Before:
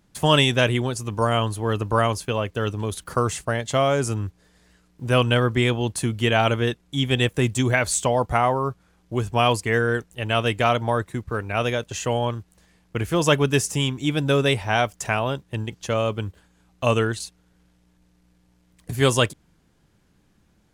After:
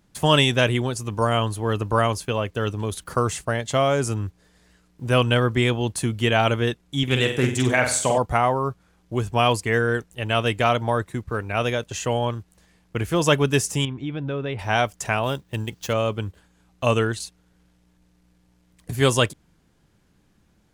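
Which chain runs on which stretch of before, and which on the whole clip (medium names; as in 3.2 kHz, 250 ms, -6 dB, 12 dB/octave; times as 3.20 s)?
7.03–8.18 s: high-pass 110 Hz 6 dB/octave + flutter echo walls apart 8.1 m, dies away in 0.49 s + loudspeaker Doppler distortion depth 0.18 ms
13.85–14.59 s: distance through air 340 m + compression 3:1, threshold -26 dBFS
15.23–15.93 s: median filter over 5 samples + treble shelf 4.8 kHz +10 dB
whole clip: none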